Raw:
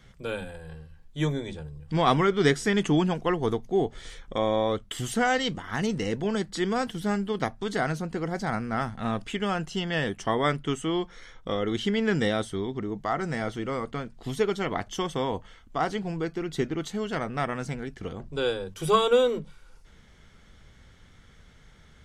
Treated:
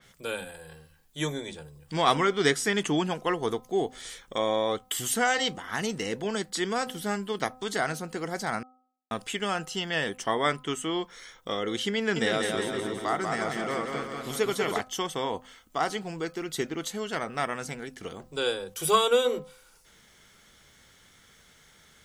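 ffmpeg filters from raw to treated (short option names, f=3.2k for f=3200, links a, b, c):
-filter_complex "[0:a]asettb=1/sr,asplit=3[a][b][c];[a]atrim=end=11.974[d];[b]atrim=start=11.97:end=14.81,asetpts=PTS-STARTPTS,afade=t=in:d=0.004:c=qsin,afade=t=out:st=2.836:d=0.004:c=qsin,aecho=1:1:190|361|514.9|653.4|778.1:0.631|0.398|0.251|0.158|0.1,atrim=end_sample=125244[e];[c]atrim=start=14.806[f];[d][e]acrossfade=d=0.004:c1=hsin:c2=qsin[g];[g][f]acrossfade=d=0.004:c1=qsin:c2=hsin,asplit=3[h][i][j];[h]atrim=end=8.63,asetpts=PTS-STARTPTS,afade=t=out:st=8.626:d=0.004:c=hsin[k];[i]atrim=start=8.63:end=9.11,asetpts=PTS-STARTPTS,volume=0[l];[j]atrim=start=9.11,asetpts=PTS-STARTPTS,afade=t=in:d=0.004:c=hsin[m];[k][l][m]concat=n=3:v=0:a=1,aemphasis=mode=production:type=bsi,bandreject=f=255.7:t=h:w=4,bandreject=f=511.4:t=h:w=4,bandreject=f=767.1:t=h:w=4,bandreject=f=1.0228k:t=h:w=4,bandreject=f=1.2785k:t=h:w=4,adynamicequalizer=threshold=0.00708:dfrequency=3900:dqfactor=0.7:tfrequency=3900:tqfactor=0.7:attack=5:release=100:ratio=0.375:range=2.5:mode=cutabove:tftype=highshelf"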